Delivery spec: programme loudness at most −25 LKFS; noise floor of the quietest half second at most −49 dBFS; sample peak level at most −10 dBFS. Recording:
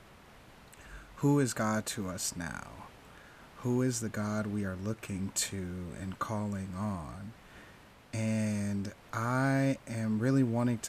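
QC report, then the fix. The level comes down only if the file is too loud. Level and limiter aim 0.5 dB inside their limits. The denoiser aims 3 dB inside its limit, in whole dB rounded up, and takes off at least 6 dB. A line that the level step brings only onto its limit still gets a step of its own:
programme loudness −33.0 LKFS: in spec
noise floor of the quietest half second −56 dBFS: in spec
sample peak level −18.0 dBFS: in spec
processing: no processing needed

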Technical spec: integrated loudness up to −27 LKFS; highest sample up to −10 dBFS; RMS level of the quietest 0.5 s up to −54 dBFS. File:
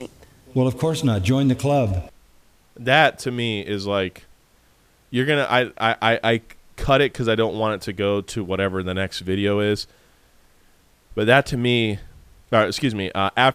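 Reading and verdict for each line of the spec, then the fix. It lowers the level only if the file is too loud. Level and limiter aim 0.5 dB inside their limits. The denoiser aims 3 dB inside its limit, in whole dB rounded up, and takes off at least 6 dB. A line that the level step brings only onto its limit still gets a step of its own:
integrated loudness −21.0 LKFS: out of spec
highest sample −2.0 dBFS: out of spec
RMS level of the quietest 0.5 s −57 dBFS: in spec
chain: level −6.5 dB
brickwall limiter −10.5 dBFS

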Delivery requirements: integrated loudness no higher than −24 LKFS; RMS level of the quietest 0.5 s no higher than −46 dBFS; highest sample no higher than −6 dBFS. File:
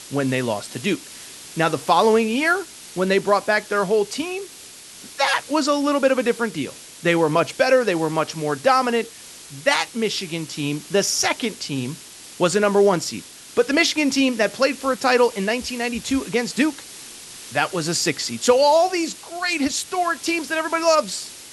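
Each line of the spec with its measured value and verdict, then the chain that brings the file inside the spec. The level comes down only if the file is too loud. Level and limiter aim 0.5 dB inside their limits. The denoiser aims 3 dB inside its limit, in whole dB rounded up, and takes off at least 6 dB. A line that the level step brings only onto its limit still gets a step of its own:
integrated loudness −20.5 LKFS: out of spec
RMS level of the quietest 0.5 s −42 dBFS: out of spec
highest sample −3.5 dBFS: out of spec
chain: broadband denoise 6 dB, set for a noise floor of −42 dBFS
level −4 dB

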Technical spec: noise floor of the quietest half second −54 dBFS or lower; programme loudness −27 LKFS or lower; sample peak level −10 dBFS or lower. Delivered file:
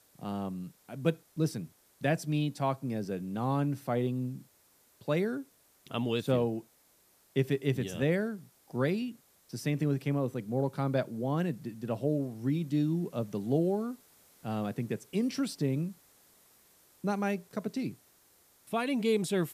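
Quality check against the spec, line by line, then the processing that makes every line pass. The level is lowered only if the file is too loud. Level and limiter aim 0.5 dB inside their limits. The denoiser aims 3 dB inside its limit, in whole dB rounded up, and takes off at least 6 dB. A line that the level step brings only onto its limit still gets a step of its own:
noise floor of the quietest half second −66 dBFS: in spec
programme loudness −32.5 LKFS: in spec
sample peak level −14.0 dBFS: in spec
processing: no processing needed

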